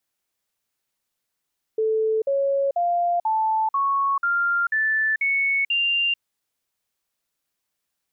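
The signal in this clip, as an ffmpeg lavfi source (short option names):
-f lavfi -i "aevalsrc='0.119*clip(min(mod(t,0.49),0.44-mod(t,0.49))/0.005,0,1)*sin(2*PI*439*pow(2,floor(t/0.49)/3)*mod(t,0.49))':d=4.41:s=44100"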